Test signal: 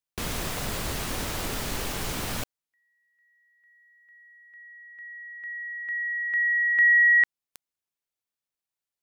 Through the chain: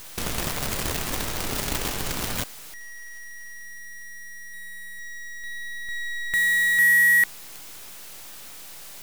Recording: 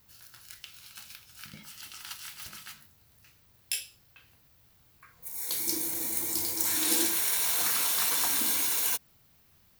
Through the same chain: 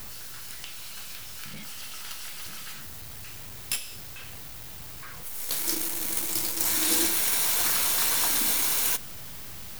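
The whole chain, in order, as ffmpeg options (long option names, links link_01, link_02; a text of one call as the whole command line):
ffmpeg -i in.wav -af "aeval=exprs='val(0)+0.5*0.0299*sgn(val(0))':channel_layout=same,acrusher=bits=5:dc=4:mix=0:aa=0.000001" out.wav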